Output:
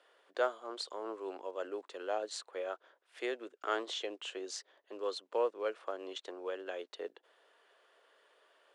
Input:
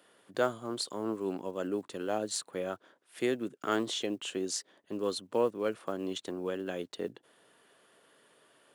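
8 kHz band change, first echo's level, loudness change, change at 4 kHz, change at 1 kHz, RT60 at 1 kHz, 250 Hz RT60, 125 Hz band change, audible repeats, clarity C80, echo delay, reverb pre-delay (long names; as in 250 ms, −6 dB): −10.0 dB, no echo audible, −4.5 dB, −4.0 dB, −2.0 dB, no reverb audible, no reverb audible, below −30 dB, no echo audible, no reverb audible, no echo audible, no reverb audible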